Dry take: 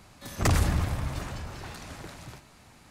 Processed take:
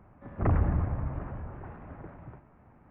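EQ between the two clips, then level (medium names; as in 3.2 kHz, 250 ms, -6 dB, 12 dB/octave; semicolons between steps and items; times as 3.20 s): Gaussian low-pass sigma 5.7 samples; -1.0 dB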